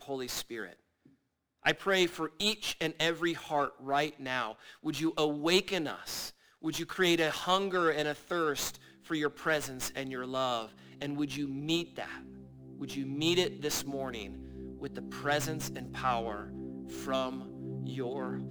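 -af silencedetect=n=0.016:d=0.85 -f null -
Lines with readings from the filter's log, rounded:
silence_start: 0.66
silence_end: 1.65 | silence_duration: 0.99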